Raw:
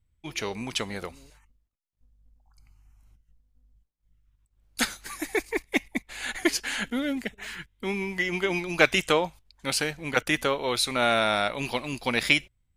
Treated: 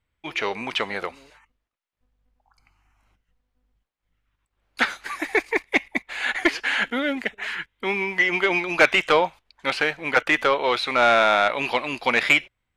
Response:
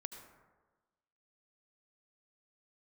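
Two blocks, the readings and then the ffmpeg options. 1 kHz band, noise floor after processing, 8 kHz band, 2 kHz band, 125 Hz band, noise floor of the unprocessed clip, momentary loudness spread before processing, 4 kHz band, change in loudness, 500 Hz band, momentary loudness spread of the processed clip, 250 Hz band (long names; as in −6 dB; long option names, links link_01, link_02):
+7.5 dB, −80 dBFS, −6.5 dB, +7.0 dB, −4.5 dB, −74 dBFS, 13 LU, +2.0 dB, +5.0 dB, +5.0 dB, 11 LU, +0.5 dB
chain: -filter_complex "[0:a]acrossover=split=3800[link_01][link_02];[link_02]acompressor=threshold=-38dB:ratio=4:attack=1:release=60[link_03];[link_01][link_03]amix=inputs=2:normalize=0,bass=frequency=250:gain=-4,treble=frequency=4000:gain=-11,asplit=2[link_04][link_05];[link_05]highpass=frequency=720:poles=1,volume=16dB,asoftclip=type=tanh:threshold=-4.5dB[link_06];[link_04][link_06]amix=inputs=2:normalize=0,lowpass=frequency=5200:poles=1,volume=-6dB"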